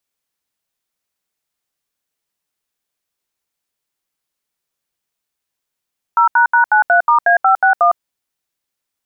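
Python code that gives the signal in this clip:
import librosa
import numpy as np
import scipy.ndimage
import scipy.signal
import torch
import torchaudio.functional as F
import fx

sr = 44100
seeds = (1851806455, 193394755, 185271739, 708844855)

y = fx.dtmf(sr, digits='0##93*A561', tone_ms=107, gap_ms=75, level_db=-10.5)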